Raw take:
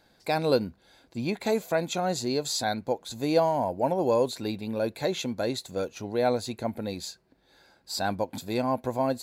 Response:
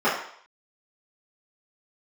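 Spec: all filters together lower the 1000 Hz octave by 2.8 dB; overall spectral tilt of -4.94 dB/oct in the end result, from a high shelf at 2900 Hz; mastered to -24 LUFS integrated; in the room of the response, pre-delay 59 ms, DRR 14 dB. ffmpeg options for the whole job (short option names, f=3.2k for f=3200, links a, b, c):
-filter_complex "[0:a]equalizer=f=1k:t=o:g=-3.5,highshelf=f=2.9k:g=-4.5,asplit=2[a][b];[1:a]atrim=start_sample=2205,adelay=59[c];[b][c]afir=irnorm=-1:irlink=0,volume=-32.5dB[d];[a][d]amix=inputs=2:normalize=0,volume=5.5dB"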